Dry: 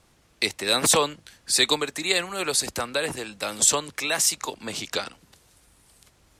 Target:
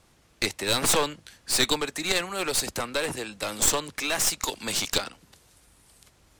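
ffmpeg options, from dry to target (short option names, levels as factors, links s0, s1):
-filter_complex "[0:a]asettb=1/sr,asplit=3[s0][s1][s2];[s0]atrim=end=4.414[s3];[s1]atrim=start=4.41:end=4.98,asetpts=PTS-STARTPTS,afade=t=in:d=0.004:c=qsin,afade=t=out:st=0.566:d=0.004:c=qsin,highshelf=f=2300:g=10[s4];[s2]atrim=start=4.976[s5];[s3][s4]acrossfade=d=0.004:c1=hsin:c2=qsin[s6];[s6][s5]acrossfade=d=0.004:c1=qsin:c2=hsin,aeval=exprs='clip(val(0),-1,0.0422)':c=same"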